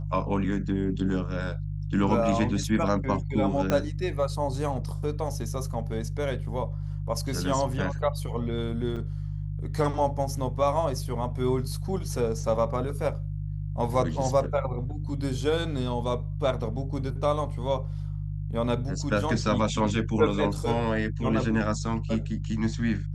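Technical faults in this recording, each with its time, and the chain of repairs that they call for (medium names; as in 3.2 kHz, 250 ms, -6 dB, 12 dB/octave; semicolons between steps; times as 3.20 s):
hum 50 Hz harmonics 3 -32 dBFS
3.70 s: pop -11 dBFS
8.96–8.97 s: dropout 6.5 ms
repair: de-click; de-hum 50 Hz, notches 3; interpolate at 8.96 s, 6.5 ms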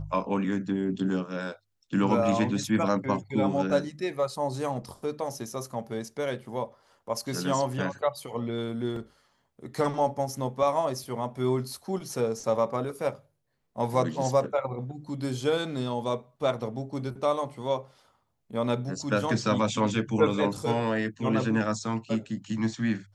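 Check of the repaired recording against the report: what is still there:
3.70 s: pop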